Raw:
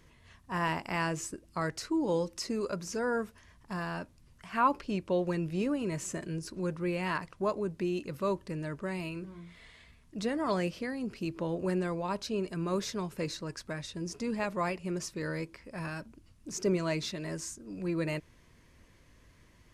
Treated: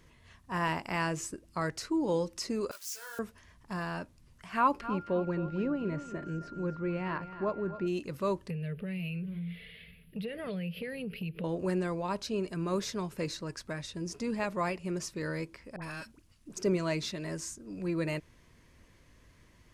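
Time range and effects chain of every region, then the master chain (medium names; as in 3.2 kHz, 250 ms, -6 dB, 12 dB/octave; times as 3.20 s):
2.71–3.19 s: zero-crossing glitches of -31 dBFS + Bessel high-pass 1.9 kHz + detune thickener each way 29 cents
4.81–7.86 s: whistle 1.4 kHz -42 dBFS + tape spacing loss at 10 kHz 28 dB + feedback delay 266 ms, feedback 35%, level -13 dB
8.50–11.44 s: FFT filter 120 Hz 0 dB, 170 Hz +15 dB, 310 Hz -13 dB, 450 Hz +9 dB, 960 Hz -17 dB, 1.4 kHz -4 dB, 2.8 kHz +11 dB, 4.8 kHz -7 dB, 7 kHz -30 dB, 11 kHz +12 dB + compression, threshold -34 dBFS
15.76–16.57 s: partial rectifier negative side -3 dB + tilt shelf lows -3.5 dB, about 1.2 kHz + phase dispersion highs, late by 59 ms, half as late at 1 kHz
whole clip: none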